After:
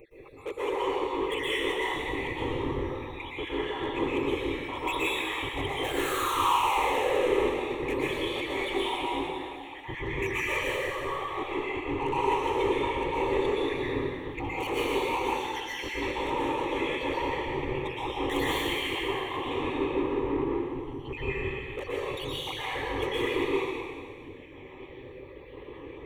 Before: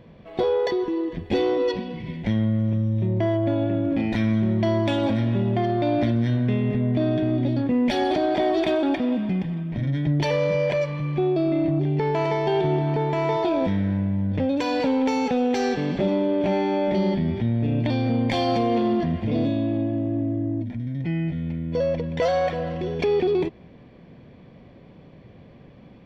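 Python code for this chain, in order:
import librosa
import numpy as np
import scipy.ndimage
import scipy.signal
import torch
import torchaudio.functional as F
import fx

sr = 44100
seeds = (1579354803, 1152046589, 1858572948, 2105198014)

y = fx.spec_dropout(x, sr, seeds[0], share_pct=79)
y = scipy.signal.sosfilt(scipy.signal.bessel(2, 270.0, 'highpass', norm='mag', fs=sr, output='sos'), y)
y = y + 0.58 * np.pad(y, (int(6.7 * sr / 1000.0), 0))[:len(y)]
y = fx.rider(y, sr, range_db=5, speed_s=2.0)
y = fx.spec_paint(y, sr, seeds[1], shape='fall', start_s=5.84, length_s=1.42, low_hz=410.0, high_hz=1700.0, level_db=-22.0)
y = fx.whisperise(y, sr, seeds[2])
y = 10.0 ** (-35.5 / 20.0) * np.tanh(y / 10.0 ** (-35.5 / 20.0))
y = fx.fixed_phaser(y, sr, hz=1000.0, stages=8)
y = y + 10.0 ** (-23.0 / 20.0) * np.pad(y, (int(71 * sr / 1000.0), 0))[:len(y)]
y = fx.rev_plate(y, sr, seeds[3], rt60_s=1.9, hf_ratio=1.0, predelay_ms=105, drr_db=-7.5)
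y = F.gain(torch.from_numpy(y), 5.5).numpy()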